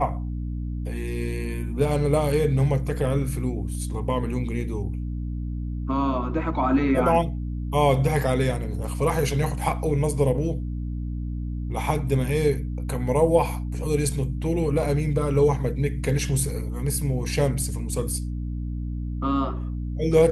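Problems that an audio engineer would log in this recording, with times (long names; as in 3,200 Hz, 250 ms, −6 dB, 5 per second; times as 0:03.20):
mains hum 60 Hz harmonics 5 −29 dBFS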